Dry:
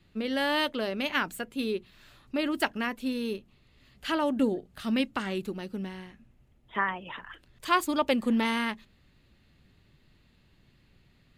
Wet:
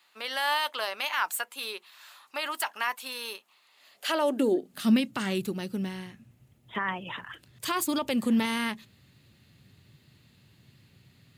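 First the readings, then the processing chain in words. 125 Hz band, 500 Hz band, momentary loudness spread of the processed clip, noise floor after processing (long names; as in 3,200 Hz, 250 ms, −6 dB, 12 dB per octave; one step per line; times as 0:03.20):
+3.0 dB, −0.5 dB, 14 LU, −64 dBFS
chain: high-shelf EQ 4,600 Hz +11.5 dB
brickwall limiter −20 dBFS, peak gain reduction 11.5 dB
high-pass filter sweep 940 Hz → 110 Hz, 0:03.66–0:05.30
level +1 dB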